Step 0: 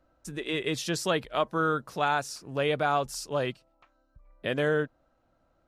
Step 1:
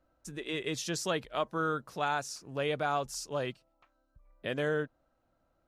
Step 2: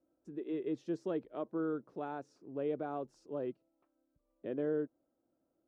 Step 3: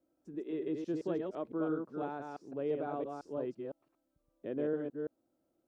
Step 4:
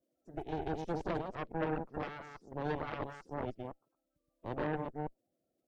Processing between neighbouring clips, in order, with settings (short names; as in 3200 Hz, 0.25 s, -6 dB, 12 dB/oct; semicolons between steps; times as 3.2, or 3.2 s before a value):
dynamic EQ 6400 Hz, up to +5 dB, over -52 dBFS, Q 2.3; gain -5 dB
band-pass 330 Hz, Q 2.2; gain +2.5 dB
reverse delay 0.169 s, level -3.5 dB
bin magnitudes rounded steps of 30 dB; added harmonics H 3 -18 dB, 6 -12 dB, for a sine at -23 dBFS